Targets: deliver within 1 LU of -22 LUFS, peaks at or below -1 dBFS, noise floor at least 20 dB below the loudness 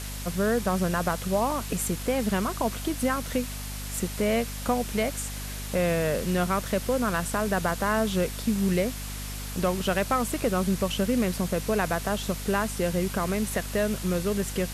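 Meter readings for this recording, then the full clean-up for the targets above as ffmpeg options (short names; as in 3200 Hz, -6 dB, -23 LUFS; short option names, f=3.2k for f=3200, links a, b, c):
hum 50 Hz; harmonics up to 250 Hz; hum level -34 dBFS; noise floor -35 dBFS; noise floor target -48 dBFS; loudness -27.5 LUFS; peak -12.0 dBFS; loudness target -22.0 LUFS
-> -af "bandreject=f=50:t=h:w=6,bandreject=f=100:t=h:w=6,bandreject=f=150:t=h:w=6,bandreject=f=200:t=h:w=6,bandreject=f=250:t=h:w=6"
-af "afftdn=nr=13:nf=-35"
-af "volume=5.5dB"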